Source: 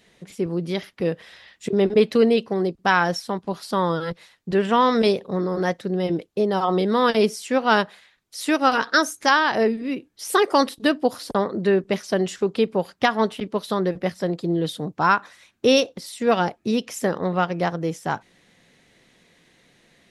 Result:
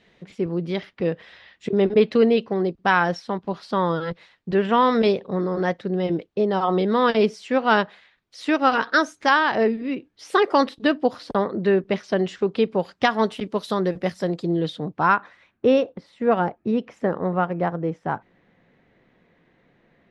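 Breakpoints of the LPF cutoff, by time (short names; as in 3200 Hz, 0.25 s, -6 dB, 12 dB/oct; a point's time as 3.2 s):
12.45 s 3700 Hz
13.41 s 9100 Hz
14.34 s 9100 Hz
14.7 s 4000 Hz
15.77 s 1600 Hz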